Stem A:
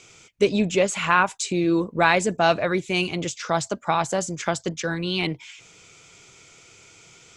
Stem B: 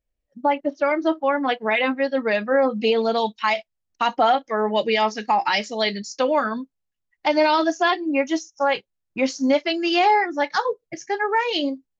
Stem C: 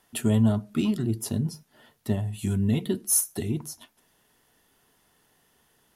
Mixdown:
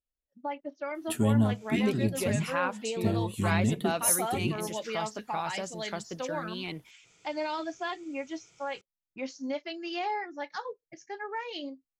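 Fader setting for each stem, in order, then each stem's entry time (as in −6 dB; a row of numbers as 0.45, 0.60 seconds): −12.5, −15.0, −3.0 decibels; 1.45, 0.00, 0.95 seconds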